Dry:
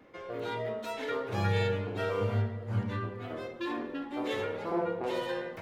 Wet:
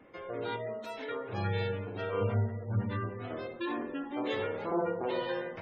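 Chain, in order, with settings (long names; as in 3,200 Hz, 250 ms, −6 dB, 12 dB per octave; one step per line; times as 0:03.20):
gate on every frequency bin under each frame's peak −30 dB strong
0:00.56–0:02.13: tuned comb filter 91 Hz, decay 0.57 s, harmonics all, mix 40%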